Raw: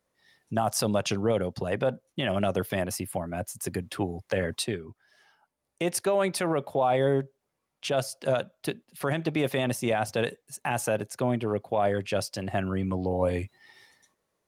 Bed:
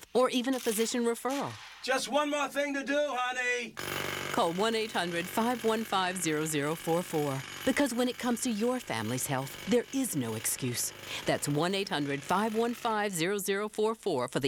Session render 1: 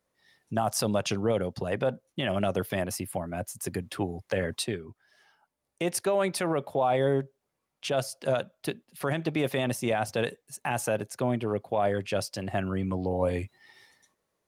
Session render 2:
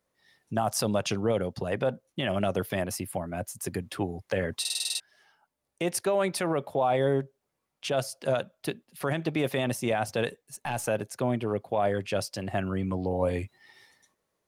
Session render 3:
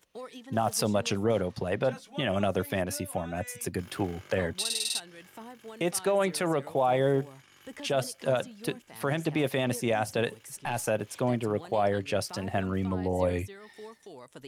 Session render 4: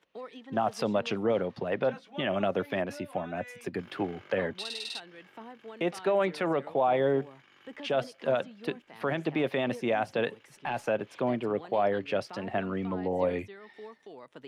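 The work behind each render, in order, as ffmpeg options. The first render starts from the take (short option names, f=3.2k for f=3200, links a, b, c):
-af "volume=-1dB"
-filter_complex "[0:a]asettb=1/sr,asplit=3[a][b][c];[a]atrim=end=10.284[d];[b]atrim=start=10.28:end=10.88,asetpts=PTS-STARTPTS,afade=t=in:d=0.004:c=qsin,afade=t=out:st=0.596:d=0.004:c=qsin,aeval=exprs='(tanh(10*val(0)+0.35)-tanh(0.35))/10':c=same[e];[c]atrim=start=10.876[f];[d][e]acrossfade=d=0.004:c1=hsin:c2=qsin[g];[g][f]acrossfade=d=0.004:c1=qsin:c2=hsin,asplit=9[h][i][j][k][l][m][n][o][p];[h]atrim=end=4.652[q];[i]atrim=start=4.598:end=4.652[r];[j]atrim=start=4.598:end=4.652[s];[k]atrim=start=4.598:end=4.652[t];[l]atrim=start=4.598:end=4.652[u];[m]atrim=start=4.598:end=4.652[v];[n]atrim=start=4.598:end=4.652[w];[o]atrim=start=4.598:end=4.652[x];[p]atrim=start=4.998[y];[q][r]acrossfade=d=0.004:c1=hsin:c2=hsin[z];[z][s]acrossfade=d=0.004:c1=hsin:c2=hsin[aa];[aa][t]acrossfade=d=0.004:c1=hsin:c2=hsin[ab];[ab][u]acrossfade=d=0.004:c1=hsin:c2=hsin[ac];[ac][v]acrossfade=d=0.004:c1=hsin:c2=hsin[ad];[ad][w]acrossfade=d=0.004:c1=hsin:c2=hsin[ae];[ae][x]acrossfade=d=0.004:c1=hsin:c2=hsin[af];[af][y]acrossfade=d=0.004:c1=hsin:c2=hsin"
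-filter_complex "[1:a]volume=-16.5dB[a];[0:a][a]amix=inputs=2:normalize=0"
-filter_complex "[0:a]acrossover=split=160 4000:gain=0.2 1 0.0891[a][b][c];[a][b][c]amix=inputs=3:normalize=0"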